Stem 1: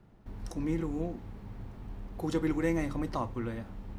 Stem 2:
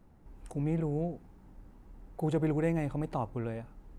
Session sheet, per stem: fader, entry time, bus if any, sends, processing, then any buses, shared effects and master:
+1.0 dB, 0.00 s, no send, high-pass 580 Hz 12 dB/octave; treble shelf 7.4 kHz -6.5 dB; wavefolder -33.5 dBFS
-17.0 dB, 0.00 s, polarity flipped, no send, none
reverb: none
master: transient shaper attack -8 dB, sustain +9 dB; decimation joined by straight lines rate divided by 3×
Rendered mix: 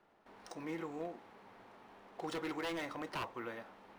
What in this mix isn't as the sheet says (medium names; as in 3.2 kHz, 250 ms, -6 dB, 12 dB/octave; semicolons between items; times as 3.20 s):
stem 2 -17.0 dB -> -28.5 dB; master: missing transient shaper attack -8 dB, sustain +9 dB